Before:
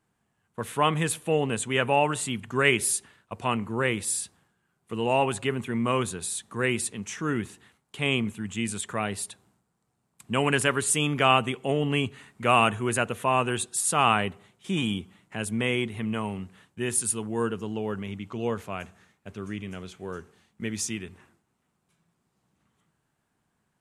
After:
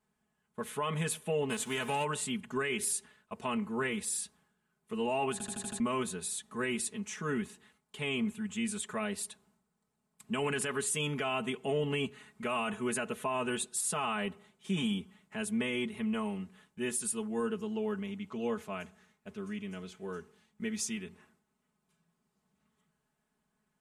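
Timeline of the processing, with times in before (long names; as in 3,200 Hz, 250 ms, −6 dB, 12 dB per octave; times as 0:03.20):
0:01.49–0:02.03: spectral envelope flattened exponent 0.6
0:05.32: stutter in place 0.08 s, 6 plays
whole clip: comb filter 4.7 ms, depth 87%; brickwall limiter −15.5 dBFS; level −7.5 dB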